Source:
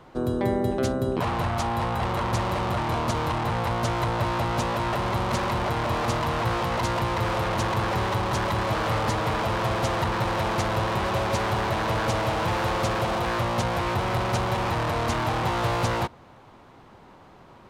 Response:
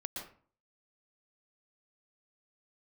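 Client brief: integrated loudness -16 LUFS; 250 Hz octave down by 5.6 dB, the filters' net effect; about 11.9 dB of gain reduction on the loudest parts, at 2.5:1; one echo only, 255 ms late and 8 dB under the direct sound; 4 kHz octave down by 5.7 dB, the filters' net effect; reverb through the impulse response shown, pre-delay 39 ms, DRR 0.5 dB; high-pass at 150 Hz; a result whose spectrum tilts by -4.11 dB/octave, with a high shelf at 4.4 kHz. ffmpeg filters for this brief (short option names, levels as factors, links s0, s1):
-filter_complex "[0:a]highpass=150,equalizer=f=250:t=o:g=-7,equalizer=f=4000:t=o:g=-6,highshelf=f=4400:g=-3,acompressor=threshold=0.00708:ratio=2.5,aecho=1:1:255:0.398,asplit=2[s0][s1];[1:a]atrim=start_sample=2205,adelay=39[s2];[s1][s2]afir=irnorm=-1:irlink=0,volume=1[s3];[s0][s3]amix=inputs=2:normalize=0,volume=10.6"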